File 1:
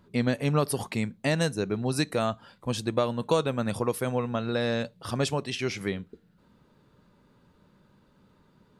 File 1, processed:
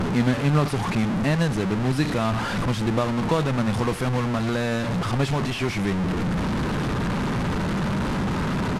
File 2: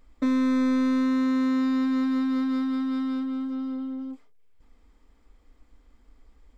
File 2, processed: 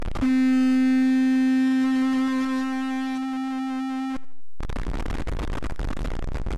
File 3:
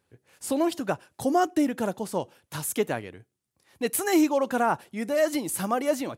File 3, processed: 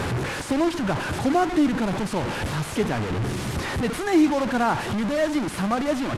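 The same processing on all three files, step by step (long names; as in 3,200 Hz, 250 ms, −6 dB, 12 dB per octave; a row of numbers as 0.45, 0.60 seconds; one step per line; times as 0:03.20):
linear delta modulator 64 kbit/s, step −23 dBFS
dynamic equaliser 520 Hz, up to −7 dB, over −38 dBFS, Q 1.2
low-pass filter 1,300 Hz 6 dB per octave
repeating echo 81 ms, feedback 43%, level −20 dB
loudness normalisation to −24 LKFS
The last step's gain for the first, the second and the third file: +7.0, +4.0, +6.0 decibels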